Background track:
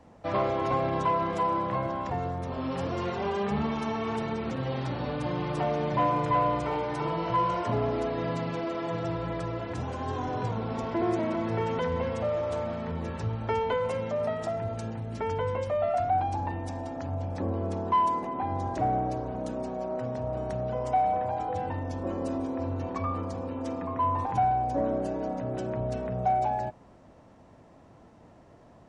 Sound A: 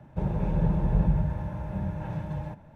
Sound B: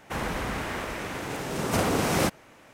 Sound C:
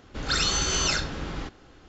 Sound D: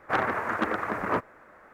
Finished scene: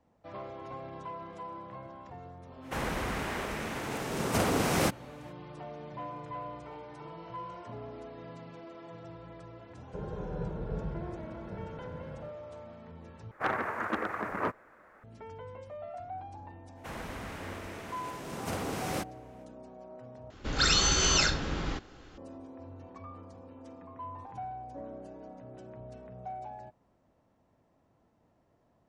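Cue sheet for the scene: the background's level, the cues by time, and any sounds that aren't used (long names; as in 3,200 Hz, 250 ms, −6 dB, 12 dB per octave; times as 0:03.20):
background track −15.5 dB
0:02.61: mix in B −3 dB, fades 0.05 s
0:09.77: mix in A −14.5 dB + hollow resonant body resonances 440/1,400 Hz, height 16 dB, ringing for 25 ms
0:13.31: overwrite with D −5 dB
0:16.74: mix in B −10.5 dB, fades 0.05 s
0:20.30: overwrite with C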